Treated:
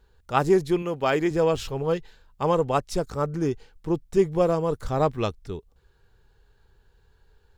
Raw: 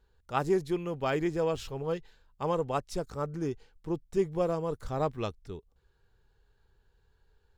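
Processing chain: 0.82–1.31 s: bass shelf 130 Hz -11 dB; trim +7.5 dB

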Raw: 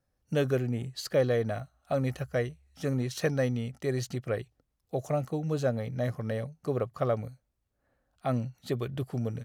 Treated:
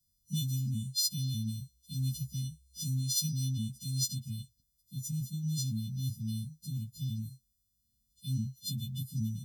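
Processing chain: partials quantised in pitch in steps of 3 st; Chebyshev band-stop 230–3400 Hz, order 5

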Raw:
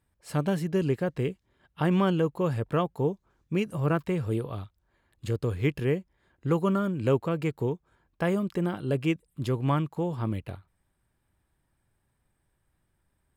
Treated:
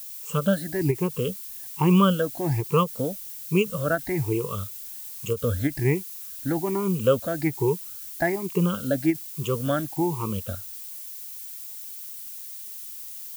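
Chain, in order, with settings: drifting ripple filter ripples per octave 0.75, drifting +1.2 Hz, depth 23 dB; added noise violet -37 dBFS; endings held to a fixed fall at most 320 dB/s; trim -1.5 dB

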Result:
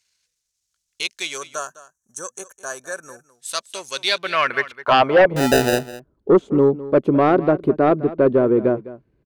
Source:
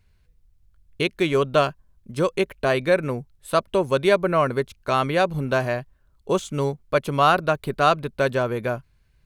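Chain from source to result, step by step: partial rectifier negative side -3 dB; 1.38–3.30 s: time-frequency box 1.8–5.6 kHz -20 dB; band-pass sweep 6.4 kHz -> 320 Hz, 3.89–5.49 s; 5.36–5.79 s: sample-rate reducer 1.1 kHz, jitter 0%; sine folder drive 7 dB, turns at -14 dBFS; 7.81–8.44 s: distance through air 150 m; on a send: delay 207 ms -16.5 dB; on the sum: trim +6.5 dB

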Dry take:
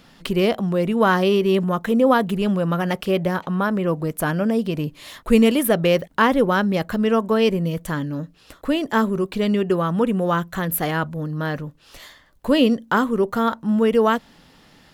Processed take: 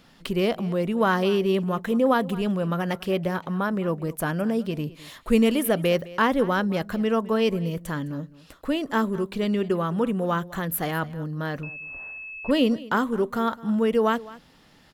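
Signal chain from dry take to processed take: delay 210 ms -19 dB; 11.63–12.51 s: class-D stage that switches slowly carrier 2.6 kHz; trim -4.5 dB

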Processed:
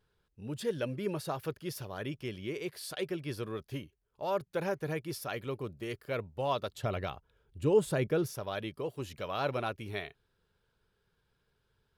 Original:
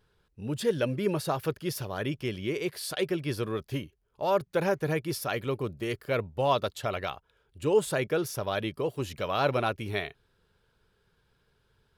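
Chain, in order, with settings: 6.71–8.33 s: bass shelf 400 Hz +10 dB; trim -6.5 dB

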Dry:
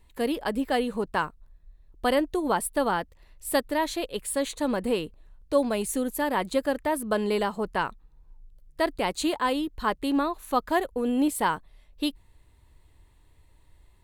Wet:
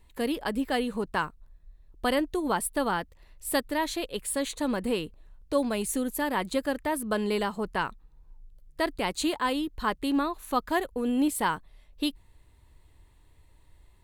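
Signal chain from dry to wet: dynamic bell 610 Hz, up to -4 dB, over -34 dBFS, Q 0.95

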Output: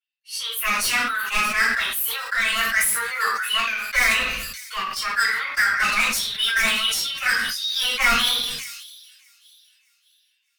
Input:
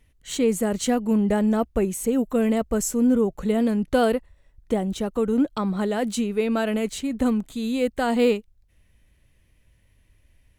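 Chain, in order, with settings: expander on every frequency bin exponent 1.5; steep high-pass 1 kHz 48 dB/octave; tilt EQ -4.5 dB/octave; level rider gain up to 15.5 dB; hard clipper -30 dBFS, distortion -2 dB; formant shift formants +6 st; on a send: feedback echo behind a high-pass 609 ms, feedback 35%, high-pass 5 kHz, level -16 dB; on the sum: simulated room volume 31 m³, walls mixed, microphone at 2.2 m; decay stretcher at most 38 dB/s

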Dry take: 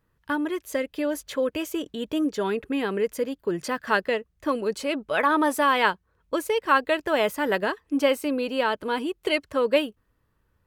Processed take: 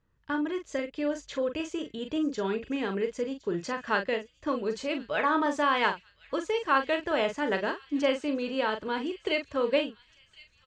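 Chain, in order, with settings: elliptic low-pass 7.1 kHz, stop band 70 dB; bass shelf 170 Hz +4.5 dB; doubling 41 ms -7.5 dB; on a send: feedback echo behind a high-pass 1063 ms, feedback 53%, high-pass 3 kHz, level -16 dB; on the sum: trim -4.5 dB

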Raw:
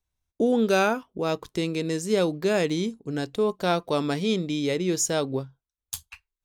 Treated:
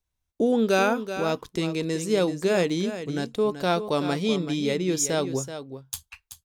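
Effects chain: delay 380 ms -10.5 dB

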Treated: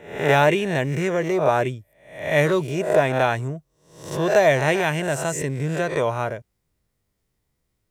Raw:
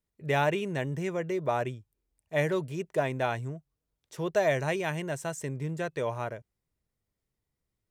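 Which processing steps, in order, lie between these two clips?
reverse spectral sustain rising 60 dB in 0.57 s; trim +8 dB

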